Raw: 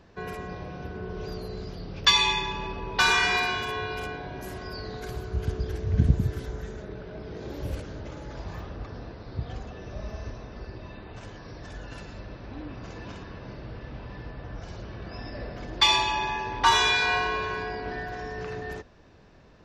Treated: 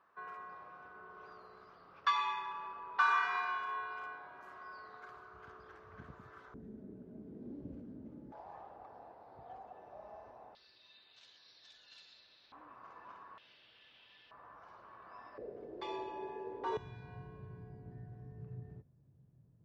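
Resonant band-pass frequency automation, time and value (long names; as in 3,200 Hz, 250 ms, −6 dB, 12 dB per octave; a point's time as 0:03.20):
resonant band-pass, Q 4.9
1,200 Hz
from 0:06.54 240 Hz
from 0:08.32 800 Hz
from 0:10.55 3,900 Hz
from 0:12.52 1,100 Hz
from 0:13.38 3,200 Hz
from 0:14.31 1,100 Hz
from 0:15.38 430 Hz
from 0:16.77 130 Hz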